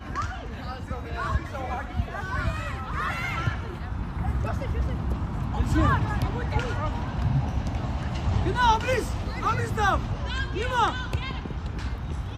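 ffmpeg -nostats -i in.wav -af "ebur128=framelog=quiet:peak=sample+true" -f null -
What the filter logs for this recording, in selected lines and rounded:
Integrated loudness:
  I:         -27.9 LUFS
  Threshold: -37.9 LUFS
Loudness range:
  LRA:         4.5 LU
  Threshold: -47.5 LUFS
  LRA low:   -30.2 LUFS
  LRA high:  -25.7 LUFS
Sample peak:
  Peak:       -9.1 dBFS
True peak:
  Peak:       -9.1 dBFS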